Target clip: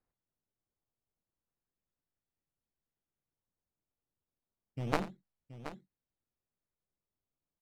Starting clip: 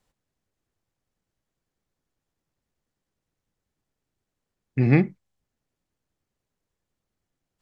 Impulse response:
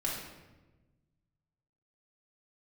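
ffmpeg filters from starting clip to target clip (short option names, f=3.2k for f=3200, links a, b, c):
-filter_complex "[0:a]acrusher=samples=13:mix=1:aa=0.000001:lfo=1:lforange=20.8:lforate=0.3,aemphasis=mode=reproduction:type=75fm,aeval=exprs='0.596*(cos(1*acos(clip(val(0)/0.596,-1,1)))-cos(1*PI/2))+0.299*(cos(3*acos(clip(val(0)/0.596,-1,1)))-cos(3*PI/2))':c=same,asplit=2[a][b];[b]aecho=0:1:86|726:0.178|0.237[c];[a][c]amix=inputs=2:normalize=0,volume=-8dB"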